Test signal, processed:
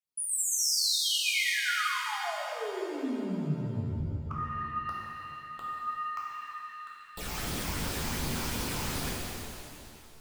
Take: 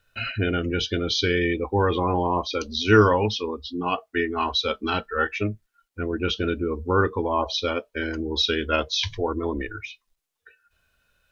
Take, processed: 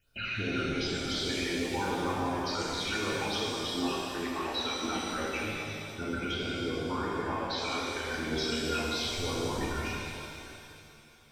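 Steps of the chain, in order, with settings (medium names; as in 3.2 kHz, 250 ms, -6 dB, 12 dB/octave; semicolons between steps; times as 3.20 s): phase shifter stages 8, 2.7 Hz, lowest notch 440–2600 Hz; harmonic-percussive split harmonic -15 dB; compression, threshold -32 dBFS; peak limiter -29.5 dBFS; pitch-shifted reverb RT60 2.6 s, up +7 st, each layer -8 dB, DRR -5.5 dB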